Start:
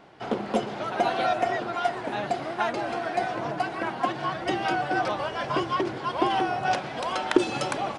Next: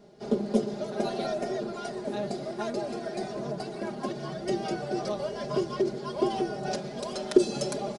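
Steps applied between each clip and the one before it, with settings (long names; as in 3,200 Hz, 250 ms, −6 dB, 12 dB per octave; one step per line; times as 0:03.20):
flat-topped bell 1,600 Hz −13.5 dB 2.4 octaves
comb filter 4.9 ms, depth 96%
level −1.5 dB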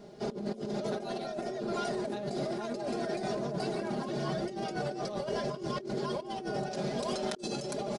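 compressor whose output falls as the input rises −36 dBFS, ratio −1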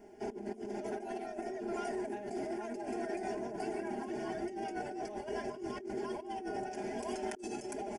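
phaser with its sweep stopped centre 800 Hz, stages 8
level −1.5 dB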